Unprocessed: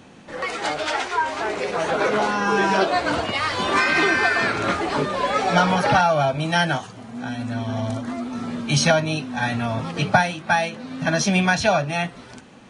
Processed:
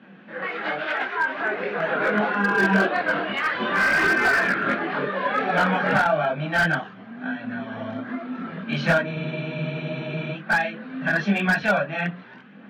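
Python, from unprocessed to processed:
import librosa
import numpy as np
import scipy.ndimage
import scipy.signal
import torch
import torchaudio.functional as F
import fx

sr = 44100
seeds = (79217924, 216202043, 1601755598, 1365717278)

y = fx.cabinet(x, sr, low_hz=160.0, low_slope=24, high_hz=3100.0, hz=(190.0, 910.0, 1600.0), db=(8, -4, 9))
y = fx.hum_notches(y, sr, base_hz=60, count=7)
y = fx.chorus_voices(y, sr, voices=4, hz=0.86, base_ms=23, depth_ms=4.3, mix_pct=55)
y = fx.spec_freeze(y, sr, seeds[0], at_s=9.08, hold_s=1.26)
y = fx.slew_limit(y, sr, full_power_hz=220.0)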